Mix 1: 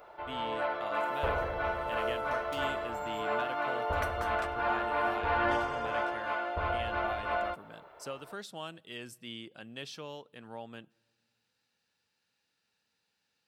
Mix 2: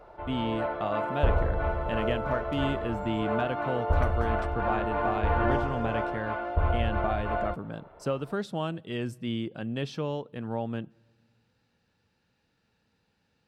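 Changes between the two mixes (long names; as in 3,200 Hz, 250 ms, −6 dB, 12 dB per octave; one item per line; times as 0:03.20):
speech +8.0 dB
master: add spectral tilt −3.5 dB per octave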